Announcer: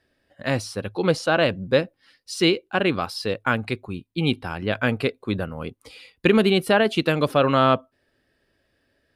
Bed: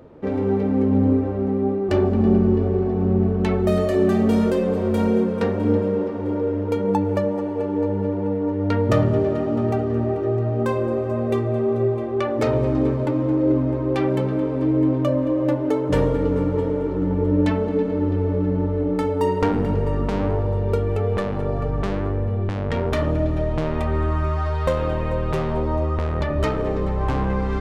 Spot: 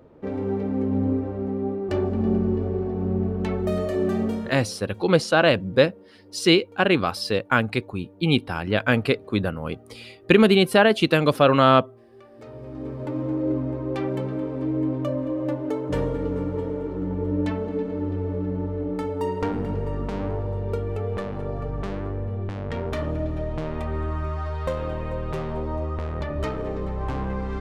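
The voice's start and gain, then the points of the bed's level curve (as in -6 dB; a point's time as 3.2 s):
4.05 s, +2.0 dB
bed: 4.23 s -5.5 dB
4.82 s -26.5 dB
12.28 s -26.5 dB
13.17 s -6 dB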